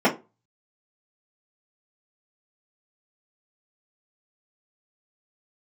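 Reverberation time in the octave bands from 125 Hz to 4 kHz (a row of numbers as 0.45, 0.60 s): 0.40, 0.30, 0.30, 0.25, 0.20, 0.20 s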